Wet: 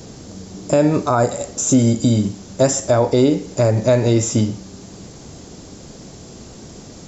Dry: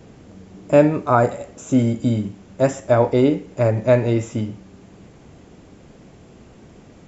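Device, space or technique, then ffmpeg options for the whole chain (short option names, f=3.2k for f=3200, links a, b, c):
over-bright horn tweeter: -af "highshelf=f=3.5k:t=q:w=1.5:g=10,alimiter=limit=-12dB:level=0:latency=1:release=191,volume=7dB"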